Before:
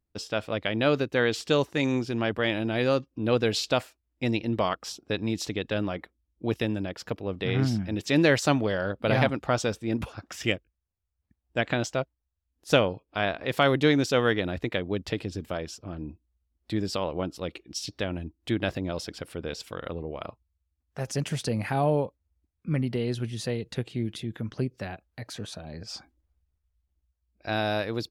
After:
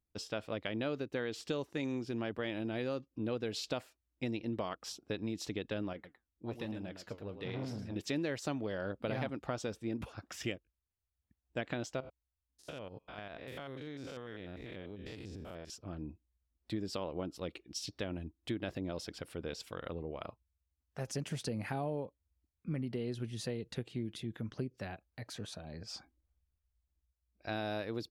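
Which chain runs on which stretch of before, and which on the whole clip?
0:05.93–0:07.96: single-tap delay 110 ms −10.5 dB + flanger 1.2 Hz, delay 3.2 ms, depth 8.2 ms, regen +72% + saturating transformer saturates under 580 Hz
0:12.00–0:15.70: spectrum averaged block by block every 100 ms + downward compressor 8 to 1, threshold −35 dBFS
whole clip: dynamic equaliser 310 Hz, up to +4 dB, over −33 dBFS, Q 0.85; downward compressor 4 to 1, threshold −28 dBFS; level −6.5 dB

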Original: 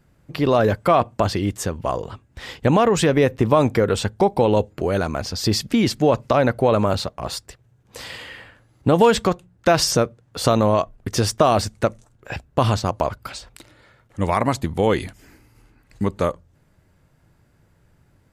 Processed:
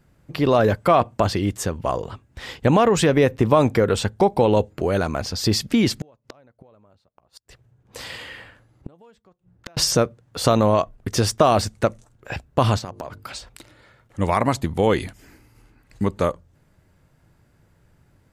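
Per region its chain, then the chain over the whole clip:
0:06.01–0:09.77: gate with flip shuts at −18 dBFS, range −36 dB + one half of a high-frequency compander decoder only
0:12.78–0:13.30: high-pass filter 74 Hz + mains-hum notches 50/100/150/200/250/300/350/400/450 Hz + downward compressor 5 to 1, threshold −29 dBFS
whole clip: no processing

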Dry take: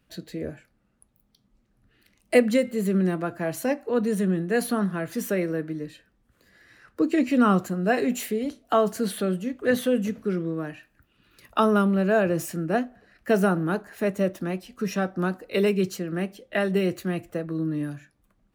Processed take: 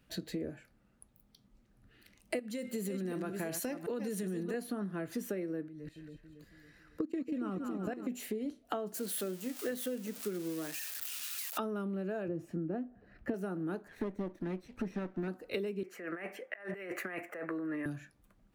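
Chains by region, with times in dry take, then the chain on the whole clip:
0:02.39–0:04.54: delay that plays each chunk backwards 369 ms, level −10.5 dB + high-shelf EQ 2,200 Hz +11 dB + downward compressor, threshold −23 dBFS
0:05.68–0:08.07: low-shelf EQ 84 Hz +12 dB + output level in coarse steps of 21 dB + echo with a time of its own for lows and highs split 740 Hz, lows 277 ms, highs 190 ms, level −7 dB
0:08.94–0:11.58: spike at every zero crossing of −23 dBFS + high-pass filter 310 Hz 6 dB per octave
0:12.28–0:13.34: low-pass filter 1,300 Hz 6 dB per octave + low-shelf EQ 280 Hz +7.5 dB
0:13.88–0:15.28: lower of the sound and its delayed copy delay 0.5 ms + de-essing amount 95% + low-pass filter 2,600 Hz 6 dB per octave
0:15.83–0:17.86: high-pass filter 560 Hz + high shelf with overshoot 2,800 Hz −10.5 dB, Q 3 + compressor whose output falls as the input rises −40 dBFS
whole clip: notch filter 1,100 Hz, Q 28; dynamic equaliser 320 Hz, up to +8 dB, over −37 dBFS, Q 1.3; downward compressor 12 to 1, threshold −34 dBFS

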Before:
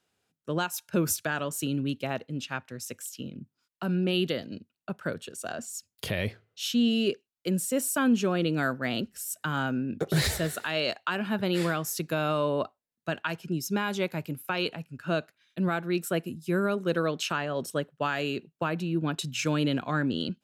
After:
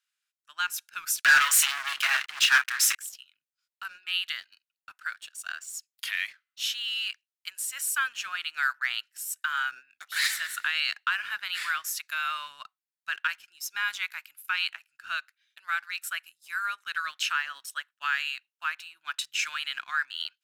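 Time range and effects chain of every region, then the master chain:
0:01.21–0:02.95: mains-hum notches 50/100/150/200/250/300 Hz + double-tracking delay 29 ms −10 dB + leveller curve on the samples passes 5
whole clip: inverse Chebyshev high-pass filter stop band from 510 Hz, stop band 50 dB; dynamic equaliser 1,700 Hz, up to +6 dB, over −47 dBFS, Q 0.85; leveller curve on the samples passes 1; level −3 dB

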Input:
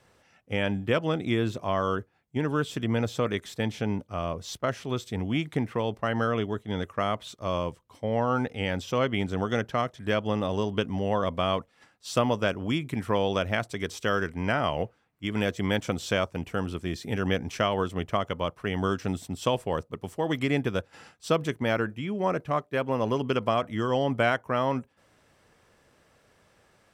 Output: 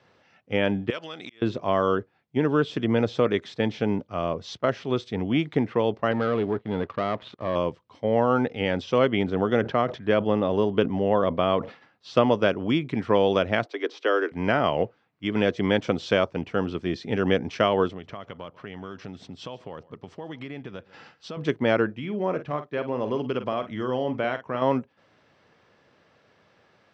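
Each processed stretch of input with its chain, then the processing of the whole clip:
0:00.90–0:01.42: downward compressor 16 to 1, threshold −30 dBFS + spectral tilt +4.5 dB per octave + volume swells 488 ms
0:06.11–0:07.56: low-pass filter 2,300 Hz + leveller curve on the samples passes 2 + downward compressor 2 to 1, threshold −32 dBFS
0:09.23–0:12.17: high-shelf EQ 4,500 Hz −10 dB + level that may fall only so fast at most 140 dB per second
0:13.65–0:14.32: Butterworth high-pass 270 Hz 72 dB per octave + high-frequency loss of the air 120 metres
0:17.89–0:21.37: low-pass filter 8,400 Hz + downward compressor 4 to 1, threshold −37 dBFS + single-tap delay 144 ms −21 dB
0:21.95–0:24.62: downward compressor 2 to 1, threshold −32 dBFS + double-tracking delay 48 ms −10 dB
whole clip: high-pass filter 110 Hz; dynamic equaliser 400 Hz, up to +5 dB, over −36 dBFS, Q 0.93; low-pass filter 5,000 Hz 24 dB per octave; level +2 dB

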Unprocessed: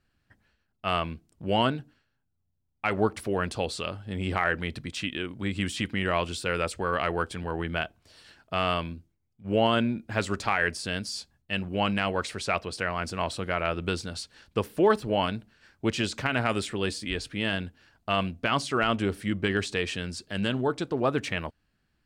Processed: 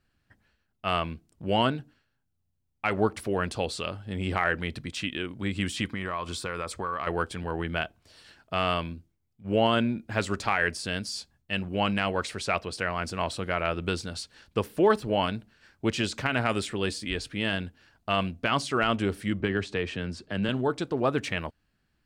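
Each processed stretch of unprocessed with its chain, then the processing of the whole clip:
0:05.86–0:07.07: parametric band 1,100 Hz +10 dB 0.41 octaves + notch filter 2,800 Hz, Q 8.2 + downward compressor 5 to 1, threshold −28 dBFS
0:19.40–0:20.49: low-pass filter 2,000 Hz 6 dB per octave + multiband upward and downward compressor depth 40%
whole clip: no processing

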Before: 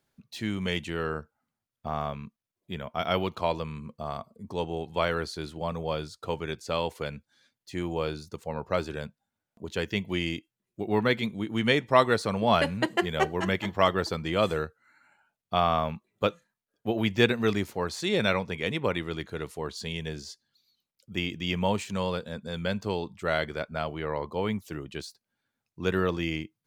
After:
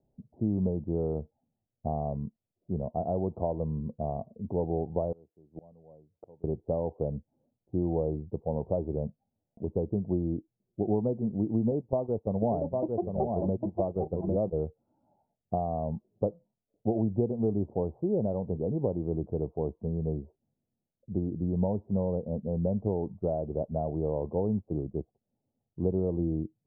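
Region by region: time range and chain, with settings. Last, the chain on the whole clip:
0:05.12–0:06.44: high-pass filter 110 Hz + gate with flip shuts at −30 dBFS, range −27 dB
0:11.71–0:14.59: noise gate −30 dBFS, range −13 dB + single-tap delay 802 ms −6.5 dB
whole clip: downward compressor 6 to 1, threshold −28 dBFS; Butterworth low-pass 780 Hz 48 dB per octave; low-shelf EQ 140 Hz +4.5 dB; level +4 dB

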